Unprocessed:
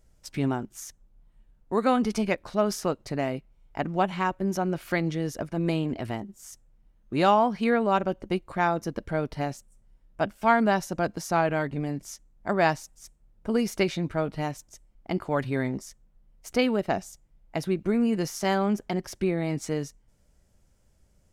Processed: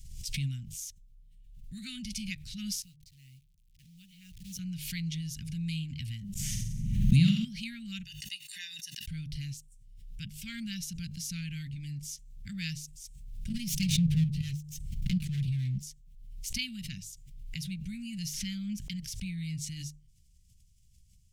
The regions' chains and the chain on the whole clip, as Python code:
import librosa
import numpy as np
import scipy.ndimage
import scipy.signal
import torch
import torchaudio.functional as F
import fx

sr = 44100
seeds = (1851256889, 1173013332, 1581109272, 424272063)

y = fx.chain(x, sr, fx.tone_stack(knobs='6-0-2'),
    fx.auto_swell(attack_ms=156.0),
    fx.quant_companded(bits=6), at=(2.82, 4.59))
y = fx.chain(y, sr, fx.peak_eq(hz=170.0, db=14.0, octaves=2.1),
    fx.room_flutter(wall_m=7.8, rt60_s=0.55),
    fx.band_squash(depth_pct=100), at=(6.35, 7.45))
y = fx.chain(y, sr, fx.highpass(hz=1500.0, slope=12),
    fx.comb(ms=1.1, depth=0.92), at=(8.04, 9.07))
y = fx.chain(y, sr, fx.lower_of_two(delay_ms=5.1),
    fx.peak_eq(hz=150.0, db=11.5, octaves=1.6),
    fx.level_steps(step_db=9), at=(13.49, 15.83))
y = fx.chain(y, sr, fx.high_shelf(hz=2400.0, db=-8.0),
    fx.comb(ms=4.3, depth=0.39),
    fx.band_squash(depth_pct=70), at=(18.33, 18.8))
y = scipy.signal.sosfilt(scipy.signal.cheby2(4, 70, [430.0, 1000.0], 'bandstop', fs=sr, output='sos'), y)
y = fx.hum_notches(y, sr, base_hz=50, count=3)
y = fx.pre_swell(y, sr, db_per_s=41.0)